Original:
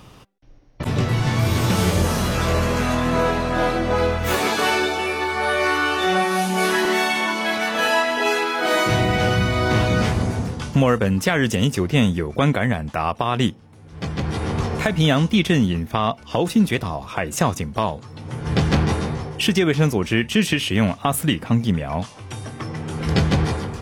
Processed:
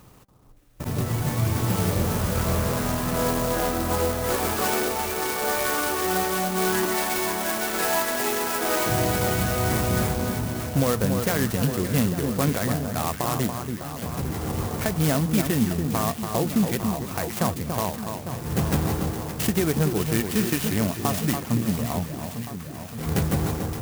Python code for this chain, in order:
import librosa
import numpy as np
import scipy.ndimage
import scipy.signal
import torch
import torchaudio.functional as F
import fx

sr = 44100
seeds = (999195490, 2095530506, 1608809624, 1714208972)

y = fx.tone_stack(x, sr, knobs='10-0-10', at=(22.18, 22.98))
y = fx.echo_alternate(y, sr, ms=284, hz=1500.0, feedback_pct=78, wet_db=-6)
y = fx.clock_jitter(y, sr, seeds[0], jitter_ms=0.085)
y = y * 10.0 ** (-5.5 / 20.0)